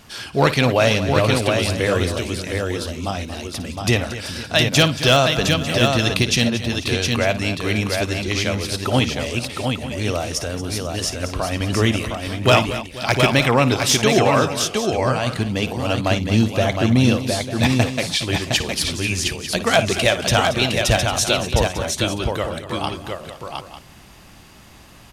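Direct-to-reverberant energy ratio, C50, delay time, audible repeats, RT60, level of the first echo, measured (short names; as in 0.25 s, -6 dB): none, none, 56 ms, 5, none, -13.5 dB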